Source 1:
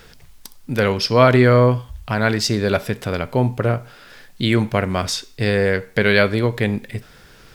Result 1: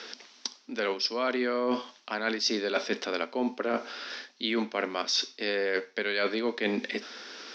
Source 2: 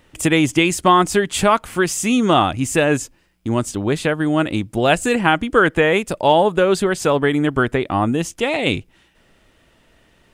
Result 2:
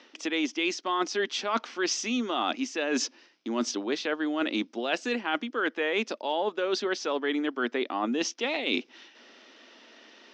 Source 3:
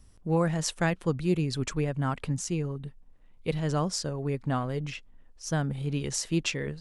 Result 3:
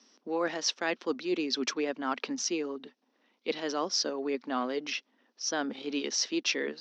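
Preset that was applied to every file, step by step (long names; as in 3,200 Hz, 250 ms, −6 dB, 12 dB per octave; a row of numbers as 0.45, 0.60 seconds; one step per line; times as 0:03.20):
Chebyshev band-pass filter 230–5,800 Hz, order 5
high-shelf EQ 3,800 Hz +11.5 dB
reversed playback
downward compressor 10 to 1, threshold −28 dBFS
reversed playback
level +2.5 dB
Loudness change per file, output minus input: −11.5, −12.0, −2.0 LU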